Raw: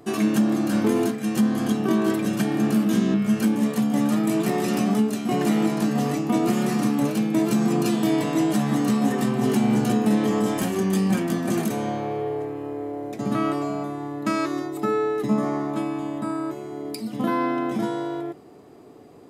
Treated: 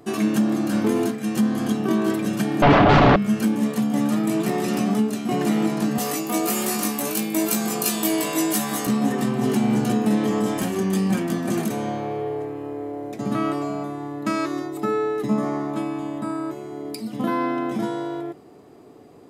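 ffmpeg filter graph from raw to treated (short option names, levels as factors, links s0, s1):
-filter_complex "[0:a]asettb=1/sr,asplit=3[s0][s1][s2];[s0]atrim=end=2.624[s3];[s1]atrim=start=2.62:end=3.16,asetpts=PTS-STARTPTS,afade=t=in:d=0.004:c=qsin,afade=t=out:st=0.536:d=0.004:c=qsin,lowpass=f=3200:w=0.5412,lowpass=f=3200:w=1.3066,aeval=exprs='0.282*sin(PI/2*4.47*val(0)/0.282)':c=same,aecho=1:1:7:0.36,atrim=end_sample=23814[s4];[s2]atrim=start=3.156[s5];[s3][s4]acrossfade=d=0.004:c1=hsin:c2=qsin[s6];[s6][s5]acrossfade=d=0.004:c1=qsin:c2=hsin,asettb=1/sr,asplit=3[s7][s8][s9];[s7]atrim=end=5.984[s10];[s8]atrim=start=5.98:end=8.87,asetpts=PTS-STARTPTS,afade=t=in:d=0.004:c=qsin,afade=t=out:st=2.886:d=0.004:c=qsin,highpass=f=210:p=1,aemphasis=mode=production:type=bsi,asplit=2[s11][s12];[s12]adelay=19,volume=0.631[s13];[s11][s13]amix=inputs=2:normalize=0,atrim=end_sample=127449[s14];[s9]atrim=start=8.866[s15];[s10][s14]acrossfade=d=0.004:c1=hsin:c2=qsin[s16];[s16][s15]acrossfade=d=0.004:c1=qsin:c2=hsin"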